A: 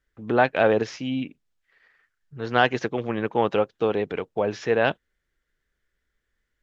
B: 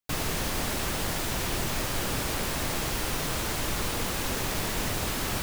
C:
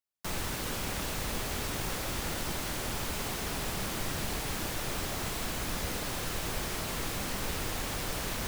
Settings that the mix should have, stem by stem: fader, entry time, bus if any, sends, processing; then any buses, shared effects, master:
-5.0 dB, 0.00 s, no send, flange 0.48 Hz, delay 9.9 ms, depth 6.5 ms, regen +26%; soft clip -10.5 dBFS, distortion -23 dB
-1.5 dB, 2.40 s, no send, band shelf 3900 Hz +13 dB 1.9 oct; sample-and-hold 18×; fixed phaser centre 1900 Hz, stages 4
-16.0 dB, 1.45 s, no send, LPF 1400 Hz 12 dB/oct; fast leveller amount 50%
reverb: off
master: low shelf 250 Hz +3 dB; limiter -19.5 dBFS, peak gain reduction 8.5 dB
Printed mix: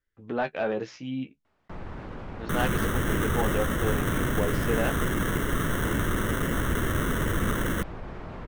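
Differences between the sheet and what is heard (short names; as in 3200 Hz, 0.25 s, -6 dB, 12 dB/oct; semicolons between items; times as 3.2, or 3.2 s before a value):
stem C -16.0 dB -> -5.5 dB; master: missing limiter -19.5 dBFS, peak gain reduction 8.5 dB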